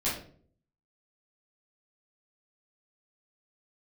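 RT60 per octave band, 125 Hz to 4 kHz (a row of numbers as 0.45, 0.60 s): 0.80, 0.70, 0.60, 0.40, 0.40, 0.35 s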